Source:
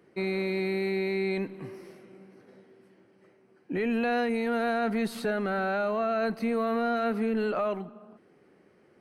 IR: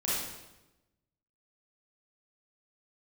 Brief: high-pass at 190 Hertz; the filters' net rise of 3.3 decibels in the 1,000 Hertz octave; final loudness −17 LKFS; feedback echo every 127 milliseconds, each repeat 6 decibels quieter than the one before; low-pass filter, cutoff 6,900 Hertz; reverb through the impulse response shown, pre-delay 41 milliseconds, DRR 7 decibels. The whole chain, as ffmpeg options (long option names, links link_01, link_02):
-filter_complex "[0:a]highpass=190,lowpass=6900,equalizer=frequency=1000:width_type=o:gain=5.5,aecho=1:1:127|254|381|508|635|762:0.501|0.251|0.125|0.0626|0.0313|0.0157,asplit=2[link_01][link_02];[1:a]atrim=start_sample=2205,adelay=41[link_03];[link_02][link_03]afir=irnorm=-1:irlink=0,volume=-14.5dB[link_04];[link_01][link_04]amix=inputs=2:normalize=0,volume=9dB"